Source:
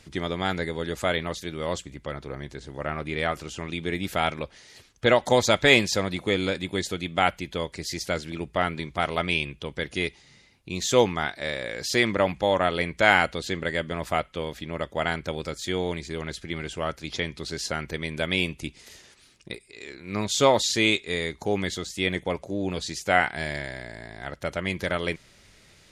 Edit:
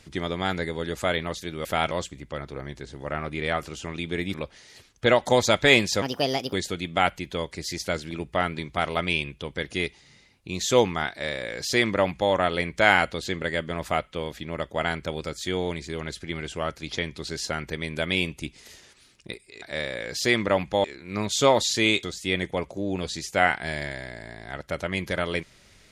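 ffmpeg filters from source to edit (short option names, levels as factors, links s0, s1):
-filter_complex "[0:a]asplit=9[s0][s1][s2][s3][s4][s5][s6][s7][s8];[s0]atrim=end=1.652[s9];[s1]atrim=start=4.078:end=4.342[s10];[s2]atrim=start=1.648:end=4.082[s11];[s3]atrim=start=4.338:end=6.024[s12];[s4]atrim=start=6.02:end=6.74,asetpts=PTS-STARTPTS,asetrate=62181,aresample=44100,atrim=end_sample=22519,asetpts=PTS-STARTPTS[s13];[s5]atrim=start=6.736:end=19.832[s14];[s6]atrim=start=11.308:end=12.532[s15];[s7]atrim=start=19.828:end=21.022[s16];[s8]atrim=start=21.758[s17];[s9][s10]acrossfade=d=0.004:c1=hsin:c2=hsin[s18];[s18][s11]acrossfade=d=0.004:c1=hsin:c2=hsin[s19];[s19][s12]acrossfade=d=0.004:c1=hsin:c2=hsin[s20];[s20][s13]acrossfade=d=0.004:c1=hsin:c2=hsin[s21];[s21][s14]acrossfade=d=0.004:c1=hsin:c2=hsin[s22];[s22][s15]acrossfade=d=0.004:c1=hsin:c2=hsin[s23];[s23][s16]acrossfade=d=0.004:c1=hsin:c2=hsin[s24];[s24][s17]acrossfade=d=0.004:c1=hsin:c2=hsin"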